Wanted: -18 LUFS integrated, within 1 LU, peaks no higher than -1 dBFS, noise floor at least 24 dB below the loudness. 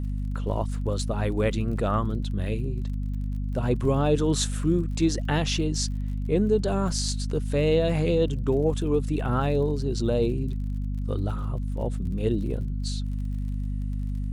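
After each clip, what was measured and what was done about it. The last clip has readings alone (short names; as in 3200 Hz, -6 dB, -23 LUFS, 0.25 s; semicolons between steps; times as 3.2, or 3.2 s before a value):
ticks 40/s; hum 50 Hz; harmonics up to 250 Hz; hum level -26 dBFS; loudness -26.5 LUFS; peak -10.5 dBFS; loudness target -18.0 LUFS
-> de-click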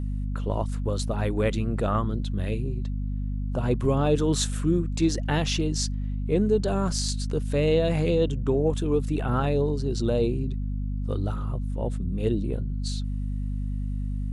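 ticks 0.21/s; hum 50 Hz; harmonics up to 250 Hz; hum level -26 dBFS
-> de-hum 50 Hz, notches 5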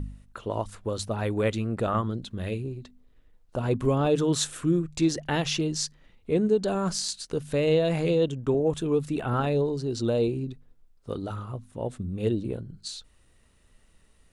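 hum none; loudness -27.5 LUFS; peak -12.0 dBFS; loudness target -18.0 LUFS
-> gain +9.5 dB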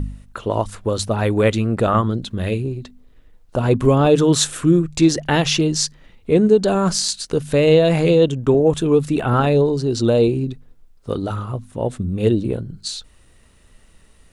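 loudness -18.0 LUFS; peak -2.5 dBFS; noise floor -52 dBFS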